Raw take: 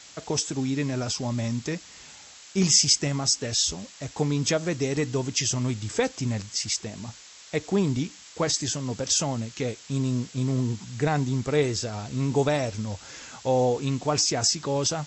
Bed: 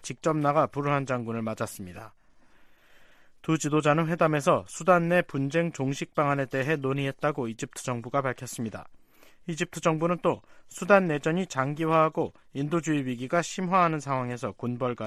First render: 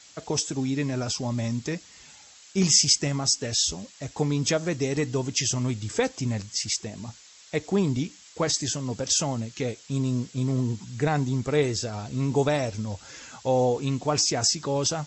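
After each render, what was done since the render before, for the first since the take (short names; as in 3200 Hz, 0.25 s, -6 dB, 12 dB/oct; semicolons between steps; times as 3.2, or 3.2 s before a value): denoiser 6 dB, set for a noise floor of -48 dBFS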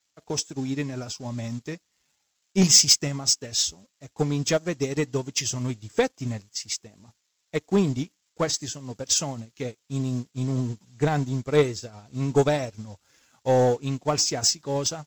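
sample leveller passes 2; upward expander 2.5:1, over -27 dBFS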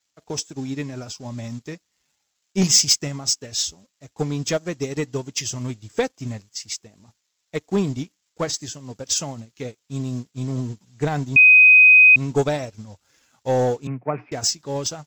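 11.36–12.16 bleep 2510 Hz -7 dBFS; 13.87–14.32 Chebyshev band-pass 120–2400 Hz, order 5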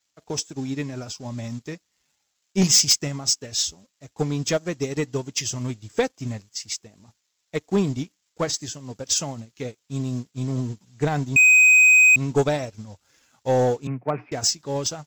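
overloaded stage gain 12 dB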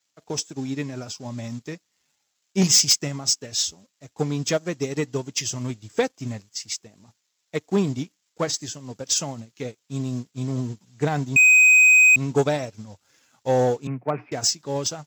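HPF 94 Hz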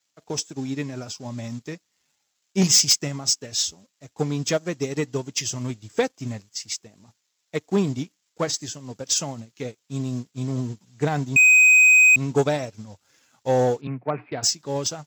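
13.81–14.43 elliptic low-pass 4300 Hz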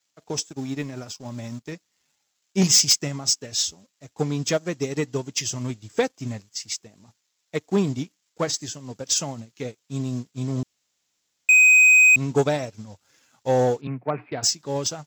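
0.49–1.72 G.711 law mismatch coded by A; 10.63–11.49 room tone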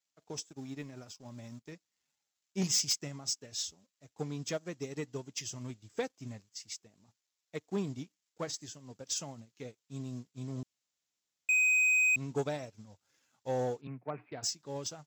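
gain -13 dB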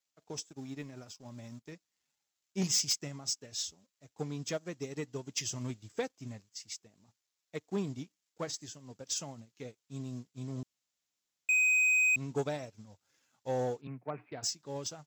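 5.27–5.92 gain +4 dB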